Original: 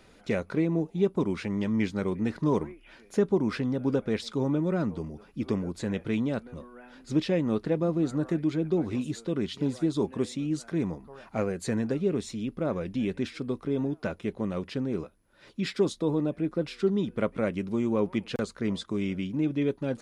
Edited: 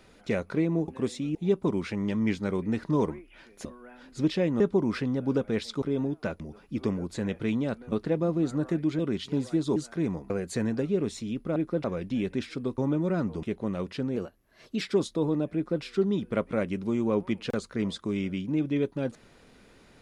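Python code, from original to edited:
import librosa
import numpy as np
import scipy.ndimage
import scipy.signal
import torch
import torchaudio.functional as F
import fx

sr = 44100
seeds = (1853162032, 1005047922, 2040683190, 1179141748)

y = fx.edit(x, sr, fx.swap(start_s=4.4, length_s=0.65, other_s=13.62, other_length_s=0.58),
    fx.move(start_s=6.57, length_s=0.95, to_s=3.18),
    fx.cut(start_s=8.59, length_s=0.69),
    fx.move(start_s=10.05, length_s=0.47, to_s=0.88),
    fx.cut(start_s=11.06, length_s=0.36),
    fx.speed_span(start_s=14.93, length_s=0.74, speed=1.13),
    fx.duplicate(start_s=16.4, length_s=0.28, to_s=12.68), tone=tone)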